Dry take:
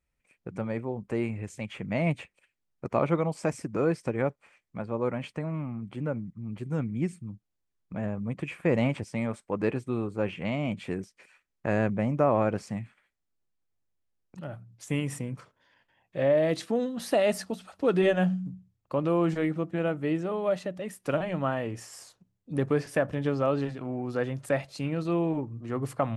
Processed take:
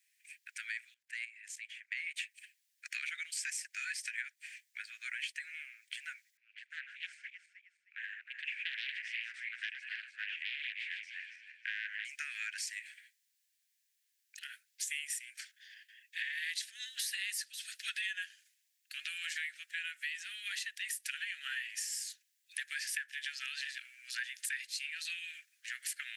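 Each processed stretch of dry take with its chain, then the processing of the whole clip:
0.94–2.16 HPF 85 Hz + high shelf 2600 Hz -9 dB + level quantiser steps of 15 dB
6.37–12.05 regenerating reverse delay 0.156 s, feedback 52%, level -5.5 dB + Bessel low-pass 1600 Hz + Doppler distortion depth 0.38 ms
whole clip: steep high-pass 1600 Hz 96 dB/oct; high shelf 3400 Hz +7 dB; compressor 6:1, threshold -46 dBFS; gain +9.5 dB

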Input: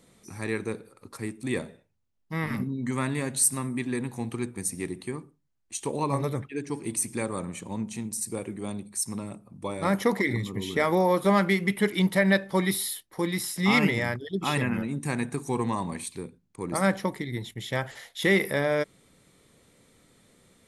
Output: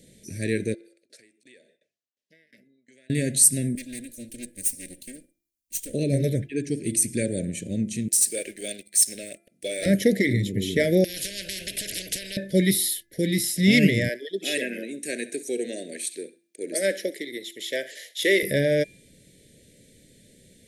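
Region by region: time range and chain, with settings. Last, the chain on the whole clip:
0.74–3.1 compressor 12:1, threshold -43 dBFS + tremolo saw down 2.8 Hz, depth 95% + BPF 590–7100 Hz
3.75–5.94 minimum comb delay 3.7 ms + pre-emphasis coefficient 0.8
8.08–9.86 HPF 750 Hz + sample leveller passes 2
11.04–12.37 high shelf 7600 Hz -11.5 dB + compressor, threshold -27 dBFS + spectral compressor 10:1
14.09–18.43 HPF 340 Hz 24 dB/oct + thin delay 66 ms, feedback 32%, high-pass 1400 Hz, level -17 dB
whole clip: elliptic band-stop 630–1600 Hz, stop band 40 dB; bell 1200 Hz -14.5 dB 0.87 oct; de-hum 340.6 Hz, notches 7; gain +6.5 dB

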